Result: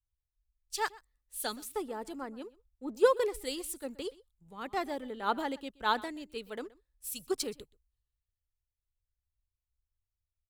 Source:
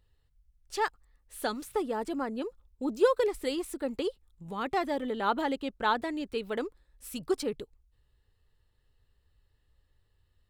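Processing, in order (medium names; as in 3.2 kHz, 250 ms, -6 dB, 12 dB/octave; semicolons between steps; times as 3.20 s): treble shelf 4.3 kHz +11 dB; in parallel at -10 dB: crossover distortion -47.5 dBFS; on the sum: delay 125 ms -19.5 dB; three bands expanded up and down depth 70%; trim -8.5 dB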